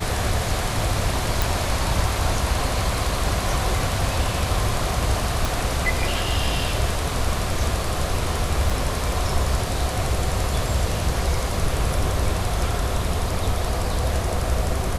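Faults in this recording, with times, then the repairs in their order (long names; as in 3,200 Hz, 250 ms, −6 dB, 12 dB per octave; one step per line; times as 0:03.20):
0:01.42: click
0:05.45: click
0:08.70: drop-out 3.1 ms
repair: click removal
repair the gap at 0:08.70, 3.1 ms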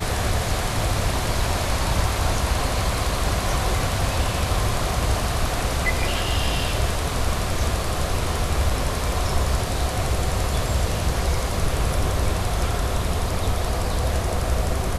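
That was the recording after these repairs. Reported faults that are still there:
0:05.45: click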